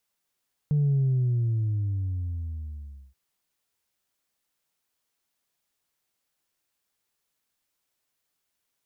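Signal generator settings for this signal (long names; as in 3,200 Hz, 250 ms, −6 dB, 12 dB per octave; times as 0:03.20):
bass drop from 150 Hz, over 2.43 s, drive 0.5 dB, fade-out 2.21 s, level −20 dB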